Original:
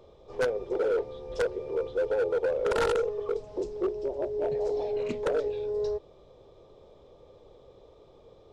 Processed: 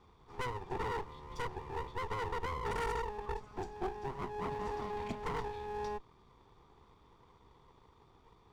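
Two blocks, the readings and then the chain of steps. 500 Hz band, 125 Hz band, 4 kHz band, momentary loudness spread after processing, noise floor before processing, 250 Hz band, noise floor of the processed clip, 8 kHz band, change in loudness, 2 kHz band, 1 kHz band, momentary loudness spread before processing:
-14.5 dB, +2.0 dB, -5.0 dB, 5 LU, -56 dBFS, -7.5 dB, -64 dBFS, n/a, -10.0 dB, -5.0 dB, +1.5 dB, 6 LU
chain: minimum comb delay 0.86 ms; gain -5.5 dB

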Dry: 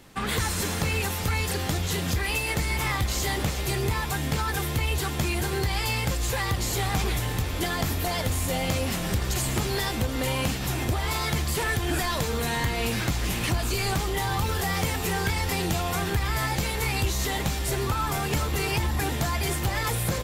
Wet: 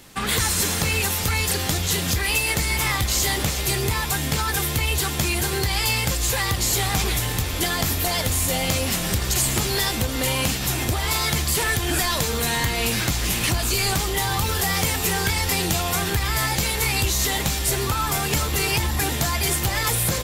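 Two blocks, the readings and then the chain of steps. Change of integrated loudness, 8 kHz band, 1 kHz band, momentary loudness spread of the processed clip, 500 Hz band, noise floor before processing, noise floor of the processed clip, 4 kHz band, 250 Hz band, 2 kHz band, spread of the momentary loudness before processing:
+5.0 dB, +9.0 dB, +3.0 dB, 2 LU, +2.0 dB, -29 dBFS, -26 dBFS, +7.0 dB, +2.0 dB, +5.0 dB, 1 LU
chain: high shelf 2800 Hz +8 dB; gain +2 dB

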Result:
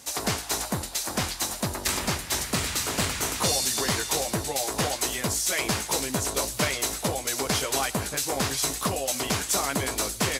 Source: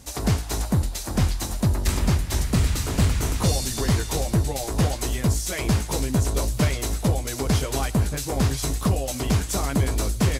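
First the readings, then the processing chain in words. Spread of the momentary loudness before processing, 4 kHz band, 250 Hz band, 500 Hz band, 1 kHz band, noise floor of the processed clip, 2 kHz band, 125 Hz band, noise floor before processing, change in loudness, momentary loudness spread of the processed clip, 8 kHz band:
2 LU, +4.0 dB, -7.0 dB, -1.0 dB, +1.5 dB, -38 dBFS, +3.5 dB, -12.5 dB, -32 dBFS, -2.0 dB, 4 LU, +4.0 dB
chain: HPF 740 Hz 6 dB/oct; gain +4 dB

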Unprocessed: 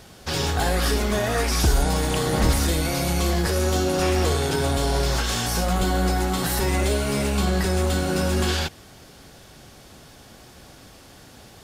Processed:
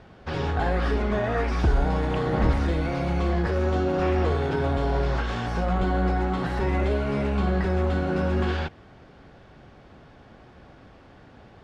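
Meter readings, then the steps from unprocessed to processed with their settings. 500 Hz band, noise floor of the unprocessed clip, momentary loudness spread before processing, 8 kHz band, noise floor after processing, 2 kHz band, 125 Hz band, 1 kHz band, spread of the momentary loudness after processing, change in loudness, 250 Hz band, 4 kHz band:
-1.5 dB, -48 dBFS, 3 LU, under -20 dB, -51 dBFS, -4.0 dB, -1.5 dB, -1.5 dB, 4 LU, -2.5 dB, -1.5 dB, -13.0 dB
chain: LPF 2000 Hz 12 dB/oct; gain -1.5 dB

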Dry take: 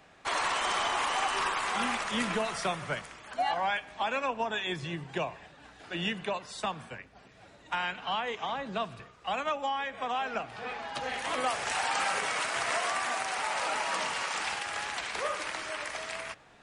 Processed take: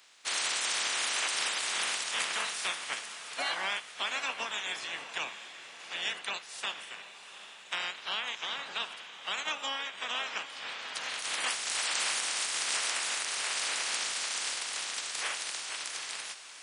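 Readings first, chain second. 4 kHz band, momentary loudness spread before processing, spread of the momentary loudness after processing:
+4.0 dB, 8 LU, 10 LU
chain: spectral limiter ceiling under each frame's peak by 21 dB; HPF 1400 Hz 6 dB/oct; diffused feedback echo 0.756 s, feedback 41%, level -11.5 dB

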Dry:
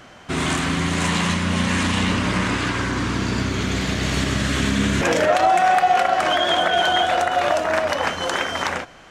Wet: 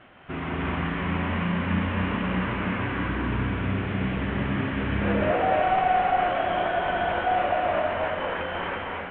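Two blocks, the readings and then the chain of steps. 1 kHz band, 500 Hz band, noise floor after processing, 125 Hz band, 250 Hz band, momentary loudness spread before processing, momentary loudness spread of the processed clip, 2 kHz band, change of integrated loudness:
-5.5 dB, -5.0 dB, -33 dBFS, -4.0 dB, -4.5 dB, 7 LU, 7 LU, -7.0 dB, -6.0 dB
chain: CVSD 16 kbps; non-linear reverb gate 0.34 s rising, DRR -2 dB; gain -7.5 dB

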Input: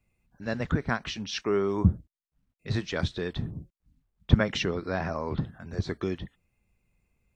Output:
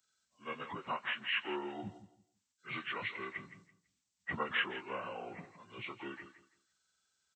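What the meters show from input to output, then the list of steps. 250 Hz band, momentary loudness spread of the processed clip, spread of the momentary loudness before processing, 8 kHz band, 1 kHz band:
-16.5 dB, 17 LU, 14 LU, n/a, -4.0 dB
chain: inharmonic rescaling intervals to 78%; differentiator; feedback echo 0.166 s, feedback 23%, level -13 dB; gain +12 dB

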